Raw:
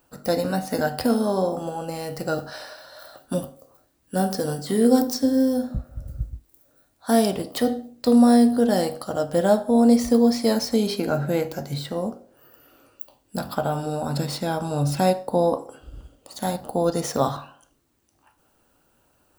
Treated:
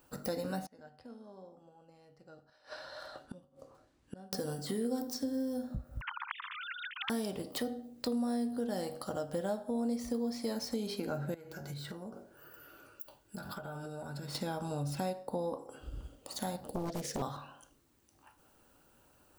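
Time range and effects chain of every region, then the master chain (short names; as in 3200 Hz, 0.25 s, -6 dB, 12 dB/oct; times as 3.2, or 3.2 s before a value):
0.66–4.33 air absorption 81 m + flipped gate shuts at -29 dBFS, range -28 dB
6.01–7.1 sine-wave speech + steep high-pass 1000 Hz 96 dB/oct + spectral compressor 10:1
11.34–14.35 bell 1500 Hz +10 dB 0.23 oct + compressor 10:1, threshold -36 dBFS + notch comb 260 Hz
16.67–17.22 band shelf 970 Hz -14 dB 1.2 oct + Doppler distortion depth 0.92 ms
whole clip: notch 680 Hz, Q 19; compressor 3:1, threshold -36 dBFS; gain -1.5 dB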